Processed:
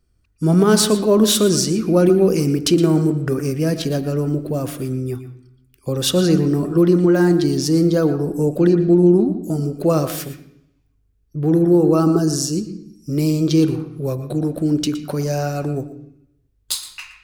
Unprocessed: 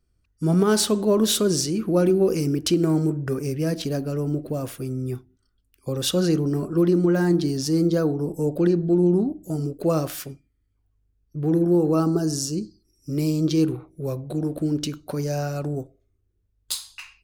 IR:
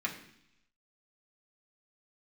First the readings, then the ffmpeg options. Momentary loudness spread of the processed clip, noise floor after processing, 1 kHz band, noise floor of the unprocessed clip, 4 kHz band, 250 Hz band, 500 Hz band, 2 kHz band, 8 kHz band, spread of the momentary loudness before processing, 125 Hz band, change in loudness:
12 LU, -62 dBFS, +5.5 dB, -69 dBFS, +5.0 dB, +5.5 dB, +5.5 dB, +5.5 dB, +5.0 dB, 12 LU, +5.0 dB, +5.5 dB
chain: -filter_complex "[0:a]asplit=2[s0][s1];[1:a]atrim=start_sample=2205,adelay=116[s2];[s1][s2]afir=irnorm=-1:irlink=0,volume=0.188[s3];[s0][s3]amix=inputs=2:normalize=0,volume=1.78"

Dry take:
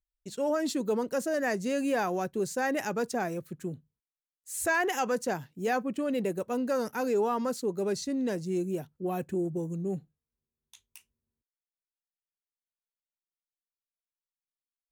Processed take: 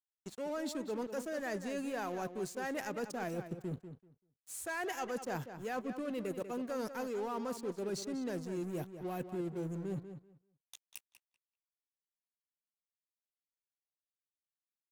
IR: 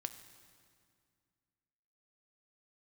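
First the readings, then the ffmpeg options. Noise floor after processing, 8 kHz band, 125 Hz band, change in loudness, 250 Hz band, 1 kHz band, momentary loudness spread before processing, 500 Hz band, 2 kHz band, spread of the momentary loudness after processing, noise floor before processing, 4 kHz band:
under -85 dBFS, -8.5 dB, -5.5 dB, -8.5 dB, -8.0 dB, -9.0 dB, 7 LU, -9.0 dB, -9.5 dB, 11 LU, under -85 dBFS, -7.0 dB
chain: -filter_complex "[0:a]areverse,acompressor=threshold=0.01:ratio=6,areverse,aeval=exprs='sgn(val(0))*max(abs(val(0))-0.00188,0)':c=same,asplit=2[s0][s1];[s1]adelay=193,lowpass=f=4200:p=1,volume=0.316,asplit=2[s2][s3];[s3]adelay=193,lowpass=f=4200:p=1,volume=0.18,asplit=2[s4][s5];[s5]adelay=193,lowpass=f=4200:p=1,volume=0.18[s6];[s0][s2][s4][s6]amix=inputs=4:normalize=0,volume=1.68"

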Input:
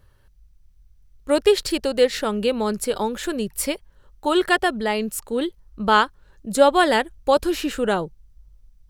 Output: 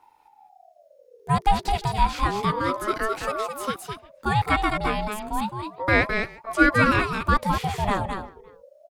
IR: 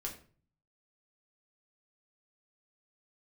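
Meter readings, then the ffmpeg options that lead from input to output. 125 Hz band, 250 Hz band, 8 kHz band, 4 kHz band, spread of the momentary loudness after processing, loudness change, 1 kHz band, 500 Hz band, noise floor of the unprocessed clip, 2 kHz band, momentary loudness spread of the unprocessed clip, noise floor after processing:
+11.0 dB, -3.0 dB, -9.5 dB, -6.5 dB, 11 LU, -2.5 dB, +0.5 dB, -9.0 dB, -56 dBFS, +1.5 dB, 9 LU, -57 dBFS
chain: -filter_complex "[0:a]asplit=2[s0][s1];[s1]aecho=0:1:212:0.473[s2];[s0][s2]amix=inputs=2:normalize=0,acrossover=split=2800[s3][s4];[s4]acompressor=threshold=0.02:ratio=4:attack=1:release=60[s5];[s3][s5]amix=inputs=2:normalize=0,asplit=2[s6][s7];[s7]adelay=350,highpass=300,lowpass=3400,asoftclip=type=hard:threshold=0.266,volume=0.0708[s8];[s6][s8]amix=inputs=2:normalize=0,aeval=exprs='val(0)*sin(2*PI*640*n/s+640*0.4/0.31*sin(2*PI*0.31*n/s))':c=same"

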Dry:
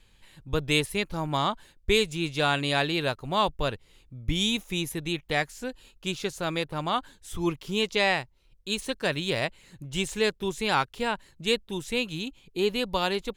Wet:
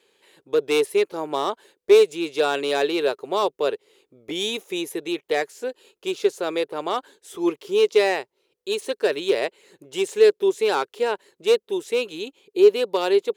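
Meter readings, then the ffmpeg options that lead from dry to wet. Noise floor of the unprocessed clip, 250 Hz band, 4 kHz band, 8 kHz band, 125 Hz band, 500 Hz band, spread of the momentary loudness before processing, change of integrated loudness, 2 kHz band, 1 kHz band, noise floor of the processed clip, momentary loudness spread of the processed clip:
-61 dBFS, +2.0 dB, -1.0 dB, +0.5 dB, -15.0 dB, +10.5 dB, 10 LU, +5.5 dB, -1.0 dB, +1.5 dB, -79 dBFS, 13 LU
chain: -af "asoftclip=type=hard:threshold=0.126,highpass=f=410:t=q:w=4.9"

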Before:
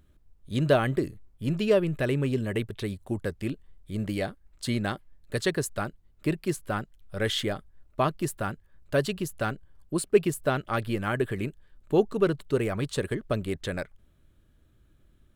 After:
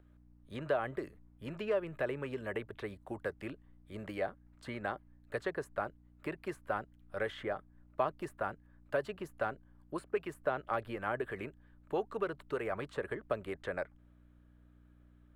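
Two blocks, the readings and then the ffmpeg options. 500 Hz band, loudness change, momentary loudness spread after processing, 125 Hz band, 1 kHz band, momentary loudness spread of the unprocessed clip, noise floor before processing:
-9.0 dB, -10.0 dB, 11 LU, -17.5 dB, -5.5 dB, 12 LU, -62 dBFS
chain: -filter_complex "[0:a]acrossover=split=920|2300[s0][s1][s2];[s0]acompressor=threshold=0.0447:ratio=4[s3];[s1]acompressor=threshold=0.00891:ratio=4[s4];[s2]acompressor=threshold=0.00447:ratio=4[s5];[s3][s4][s5]amix=inputs=3:normalize=0,aeval=exprs='val(0)+0.00501*(sin(2*PI*60*n/s)+sin(2*PI*2*60*n/s)/2+sin(2*PI*3*60*n/s)/3+sin(2*PI*4*60*n/s)/4+sin(2*PI*5*60*n/s)/5)':c=same,acrossover=split=470 2200:gain=0.158 1 0.178[s6][s7][s8];[s6][s7][s8]amix=inputs=3:normalize=0,volume=1.12"

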